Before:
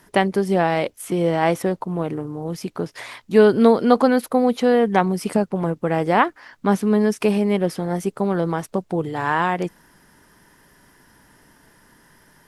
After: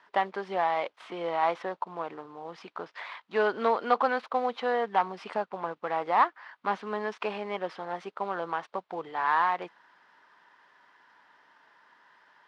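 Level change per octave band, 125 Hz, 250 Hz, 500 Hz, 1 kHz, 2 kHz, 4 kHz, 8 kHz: -25.0 dB, -21.5 dB, -12.0 dB, -4.0 dB, -6.5 dB, -9.0 dB, under -20 dB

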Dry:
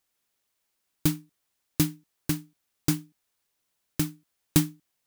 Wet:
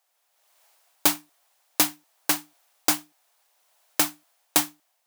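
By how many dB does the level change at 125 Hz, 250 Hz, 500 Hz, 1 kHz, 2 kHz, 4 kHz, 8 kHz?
-17.0 dB, -5.0 dB, +4.5 dB, +14.0 dB, +10.0 dB, +9.0 dB, +8.5 dB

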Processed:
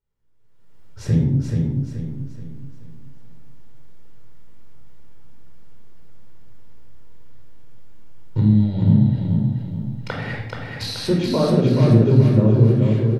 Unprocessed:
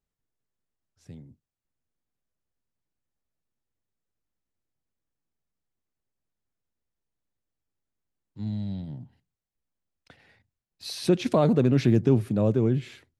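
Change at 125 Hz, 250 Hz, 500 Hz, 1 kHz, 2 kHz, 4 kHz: +12.5 dB, +8.0 dB, +5.0 dB, +4.0 dB, +9.0 dB, +7.5 dB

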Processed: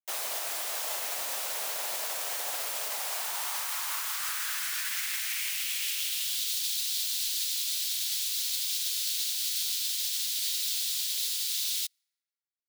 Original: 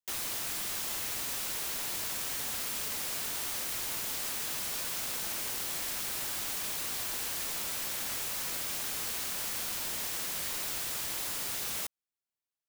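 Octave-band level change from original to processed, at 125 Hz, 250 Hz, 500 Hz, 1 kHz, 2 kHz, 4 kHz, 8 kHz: under -25 dB, under -15 dB, +0.5 dB, +2.0 dB, +2.5 dB, +7.0 dB, +3.5 dB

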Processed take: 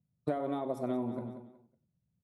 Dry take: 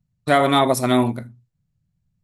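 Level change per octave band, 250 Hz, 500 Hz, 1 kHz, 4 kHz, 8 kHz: -14.5 dB, -15.5 dB, -20.5 dB, under -30 dB, under -30 dB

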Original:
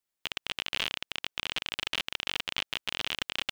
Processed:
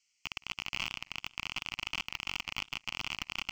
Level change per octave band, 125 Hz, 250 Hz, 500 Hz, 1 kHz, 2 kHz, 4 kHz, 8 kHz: 0.0 dB, -3.0 dB, -11.0 dB, -2.5 dB, -3.0 dB, -6.5 dB, -3.5 dB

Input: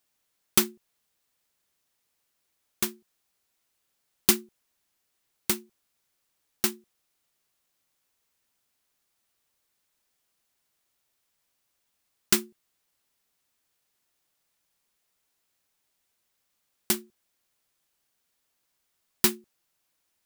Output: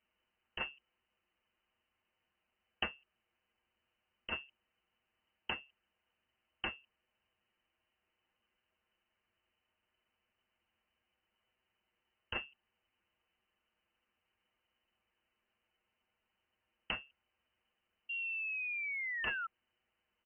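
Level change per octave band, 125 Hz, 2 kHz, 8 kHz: -14.0 dB, +1.0 dB, under -40 dB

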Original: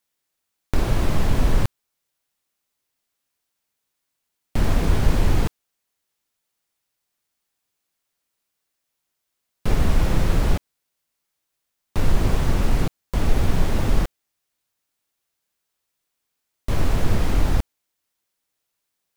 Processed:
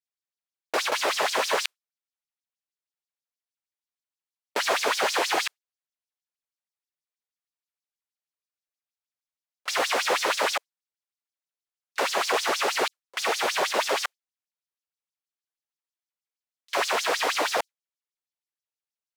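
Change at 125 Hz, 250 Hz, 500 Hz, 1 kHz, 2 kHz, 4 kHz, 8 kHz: under -35 dB, -14.0 dB, +2.5 dB, +6.5 dB, +8.0 dB, +9.0 dB, +7.0 dB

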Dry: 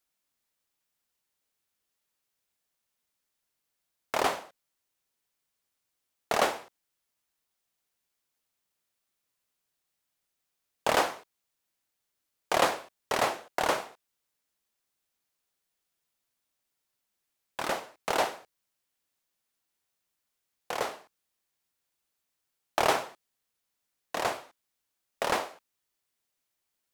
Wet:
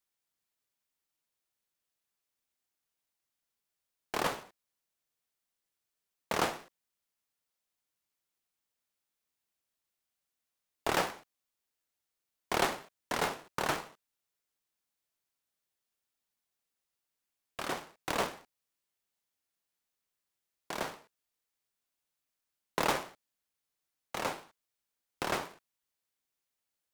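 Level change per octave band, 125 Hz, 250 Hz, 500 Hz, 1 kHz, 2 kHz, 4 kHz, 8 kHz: +1.5 dB, -1.0 dB, -6.0 dB, -5.5 dB, -4.0 dB, -4.0 dB, -3.5 dB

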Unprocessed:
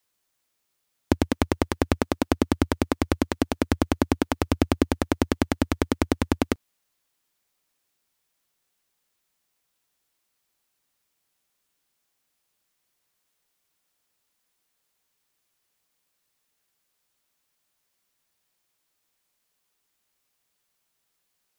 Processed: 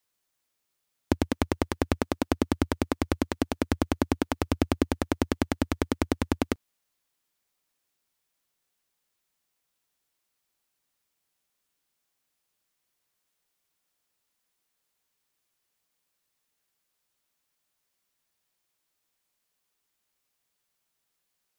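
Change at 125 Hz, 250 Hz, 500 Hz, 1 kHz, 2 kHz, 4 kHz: -3.5 dB, -3.5 dB, -3.5 dB, -3.5 dB, -3.5 dB, -3.5 dB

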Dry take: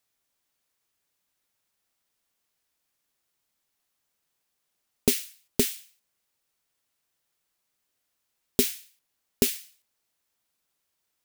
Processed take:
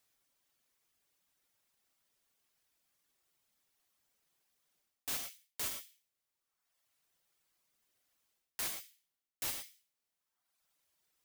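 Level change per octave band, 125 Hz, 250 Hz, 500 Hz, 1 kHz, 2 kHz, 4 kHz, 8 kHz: -22.5 dB, -28.5 dB, -25.0 dB, -3.5 dB, -8.0 dB, -11.0 dB, -11.0 dB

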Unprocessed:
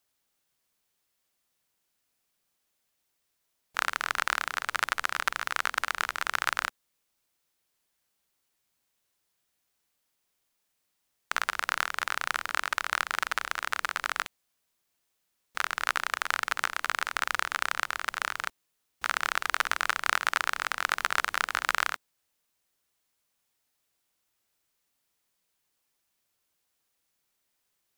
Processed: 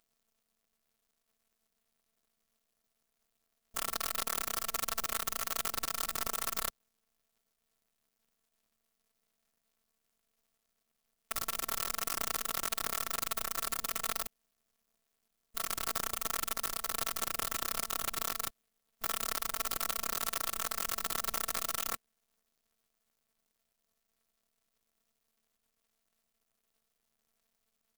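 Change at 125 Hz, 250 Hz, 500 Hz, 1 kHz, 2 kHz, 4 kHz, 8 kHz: no reading, +2.5 dB, -1.0 dB, -8.5 dB, -14.5 dB, -4.5 dB, +3.5 dB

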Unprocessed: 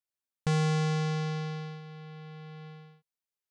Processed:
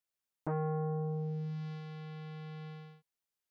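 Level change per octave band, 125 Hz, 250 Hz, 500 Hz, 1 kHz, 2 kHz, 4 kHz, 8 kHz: -6.5 dB, no reading, -2.5 dB, -5.5 dB, -14.5 dB, -17.5 dB, under -25 dB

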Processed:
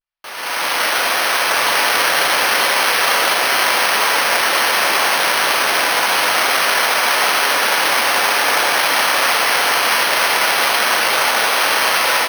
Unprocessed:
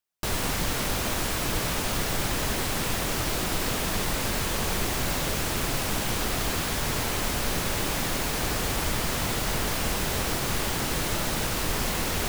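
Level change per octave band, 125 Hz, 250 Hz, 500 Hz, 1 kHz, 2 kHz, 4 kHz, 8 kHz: -13.5 dB, -1.5 dB, +10.5 dB, +16.5 dB, +18.0 dB, +14.5 dB, +9.0 dB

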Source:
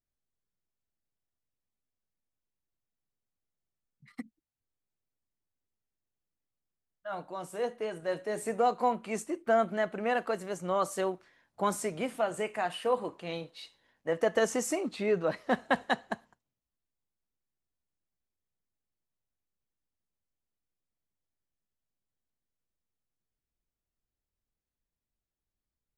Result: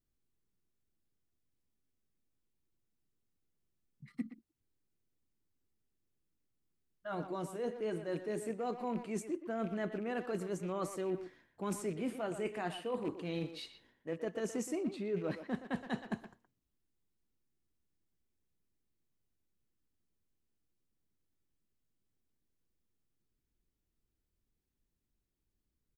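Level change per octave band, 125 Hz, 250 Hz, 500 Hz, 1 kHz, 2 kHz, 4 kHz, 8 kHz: +0.5 dB, -1.5 dB, -7.5 dB, -12.0 dB, -11.0 dB, -8.0 dB, -9.0 dB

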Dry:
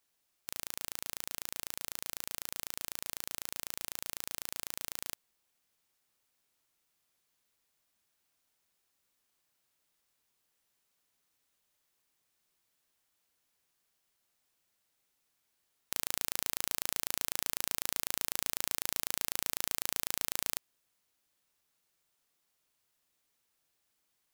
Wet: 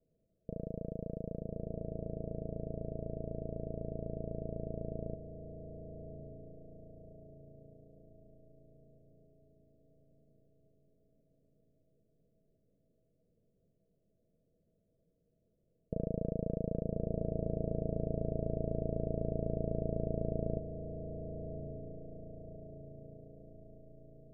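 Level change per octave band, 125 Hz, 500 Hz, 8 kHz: +20.0 dB, +15.0 dB, under -40 dB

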